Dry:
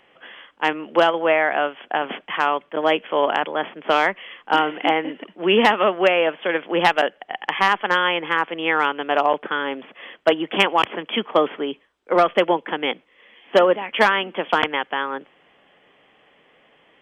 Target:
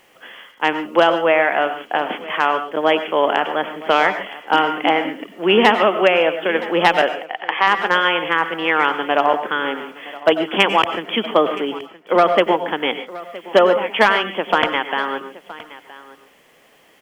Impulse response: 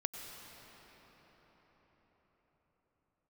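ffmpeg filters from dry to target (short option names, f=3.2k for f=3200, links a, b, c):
-filter_complex "[0:a]acrusher=bits=9:mix=0:aa=0.000001,asplit=3[a][b][c];[a]afade=t=out:st=7.25:d=0.02[d];[b]highpass=370,lowpass=3.8k,afade=t=in:st=7.25:d=0.02,afade=t=out:st=7.66:d=0.02[e];[c]afade=t=in:st=7.66:d=0.02[f];[d][e][f]amix=inputs=3:normalize=0,aecho=1:1:969:0.119[g];[1:a]atrim=start_sample=2205,afade=t=out:st=0.2:d=0.01,atrim=end_sample=9261[h];[g][h]afir=irnorm=-1:irlink=0,volume=3.5dB"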